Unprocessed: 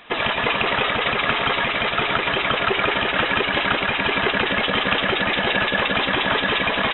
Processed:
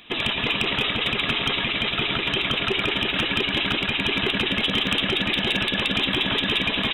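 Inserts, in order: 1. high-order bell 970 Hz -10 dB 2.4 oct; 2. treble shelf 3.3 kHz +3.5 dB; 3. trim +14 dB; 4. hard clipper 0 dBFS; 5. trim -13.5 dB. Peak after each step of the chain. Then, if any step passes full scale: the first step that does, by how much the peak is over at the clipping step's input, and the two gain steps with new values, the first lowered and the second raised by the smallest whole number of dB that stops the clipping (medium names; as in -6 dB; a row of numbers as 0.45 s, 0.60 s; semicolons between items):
-7.0 dBFS, -5.5 dBFS, +8.5 dBFS, 0.0 dBFS, -13.5 dBFS; step 3, 8.5 dB; step 3 +5 dB, step 5 -4.5 dB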